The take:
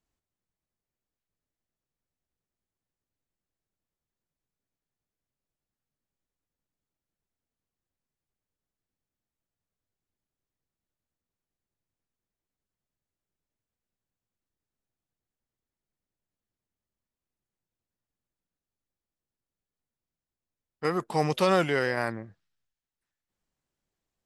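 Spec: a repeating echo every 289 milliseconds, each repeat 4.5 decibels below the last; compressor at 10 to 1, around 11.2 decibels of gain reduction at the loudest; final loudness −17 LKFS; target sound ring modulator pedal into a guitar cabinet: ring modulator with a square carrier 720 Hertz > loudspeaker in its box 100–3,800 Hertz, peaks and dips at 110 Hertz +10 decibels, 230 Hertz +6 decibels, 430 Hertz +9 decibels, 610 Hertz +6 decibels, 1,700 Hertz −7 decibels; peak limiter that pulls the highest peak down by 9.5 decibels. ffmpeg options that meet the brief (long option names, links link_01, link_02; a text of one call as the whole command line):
ffmpeg -i in.wav -af "acompressor=threshold=-29dB:ratio=10,alimiter=level_in=2.5dB:limit=-24dB:level=0:latency=1,volume=-2.5dB,aecho=1:1:289|578|867|1156|1445|1734|2023|2312|2601:0.596|0.357|0.214|0.129|0.0772|0.0463|0.0278|0.0167|0.01,aeval=exprs='val(0)*sgn(sin(2*PI*720*n/s))':channel_layout=same,highpass=100,equalizer=frequency=110:width_type=q:width=4:gain=10,equalizer=frequency=230:width_type=q:width=4:gain=6,equalizer=frequency=430:width_type=q:width=4:gain=9,equalizer=frequency=610:width_type=q:width=4:gain=6,equalizer=frequency=1700:width_type=q:width=4:gain=-7,lowpass=frequency=3800:width=0.5412,lowpass=frequency=3800:width=1.3066,volume=20.5dB" out.wav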